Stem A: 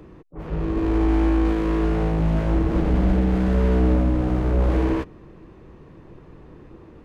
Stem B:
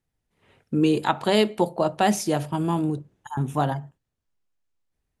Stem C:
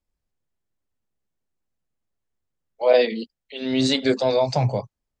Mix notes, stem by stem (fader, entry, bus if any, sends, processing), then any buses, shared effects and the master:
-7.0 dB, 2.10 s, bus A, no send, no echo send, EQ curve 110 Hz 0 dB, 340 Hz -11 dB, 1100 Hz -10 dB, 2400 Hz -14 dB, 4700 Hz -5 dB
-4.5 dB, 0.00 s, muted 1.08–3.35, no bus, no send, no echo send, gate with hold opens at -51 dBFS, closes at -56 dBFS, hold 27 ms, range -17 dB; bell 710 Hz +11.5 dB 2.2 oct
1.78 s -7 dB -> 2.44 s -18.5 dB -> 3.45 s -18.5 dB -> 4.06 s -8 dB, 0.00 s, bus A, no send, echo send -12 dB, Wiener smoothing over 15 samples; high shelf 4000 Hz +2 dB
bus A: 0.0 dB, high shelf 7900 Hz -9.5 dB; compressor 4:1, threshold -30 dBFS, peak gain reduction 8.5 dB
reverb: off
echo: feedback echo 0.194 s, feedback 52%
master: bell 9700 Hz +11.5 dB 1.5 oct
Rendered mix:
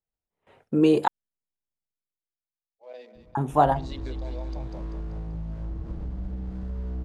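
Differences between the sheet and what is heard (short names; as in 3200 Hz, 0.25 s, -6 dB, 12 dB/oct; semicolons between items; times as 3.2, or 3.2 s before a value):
stem A: entry 2.10 s -> 3.15 s; stem C -7.0 dB -> -16.0 dB; master: missing bell 9700 Hz +11.5 dB 1.5 oct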